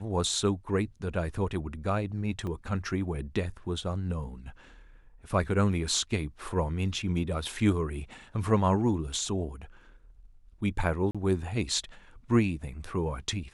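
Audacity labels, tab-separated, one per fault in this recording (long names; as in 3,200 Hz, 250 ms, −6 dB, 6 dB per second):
2.470000	2.470000	drop-out 2 ms
11.110000	11.150000	drop-out 36 ms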